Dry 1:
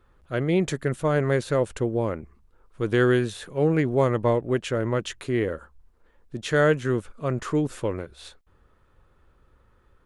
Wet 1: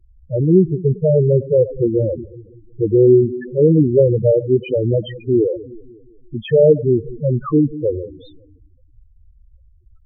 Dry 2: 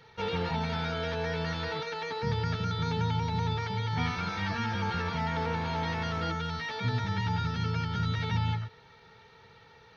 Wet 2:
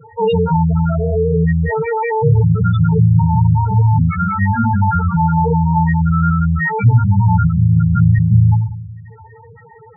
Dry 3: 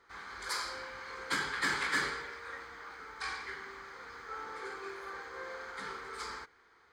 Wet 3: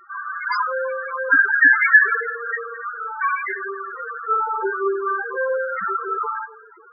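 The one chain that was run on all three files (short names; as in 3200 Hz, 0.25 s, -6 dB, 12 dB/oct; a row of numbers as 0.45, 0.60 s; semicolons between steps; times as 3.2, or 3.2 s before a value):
split-band echo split 450 Hz, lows 0.182 s, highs 98 ms, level -15.5 dB; loudest bins only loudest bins 4; normalise peaks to -2 dBFS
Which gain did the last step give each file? +11.5, +20.5, +25.0 dB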